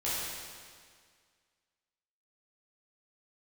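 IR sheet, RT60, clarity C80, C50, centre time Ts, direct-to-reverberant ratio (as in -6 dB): 1.9 s, -1.0 dB, -3.5 dB, 136 ms, -10.0 dB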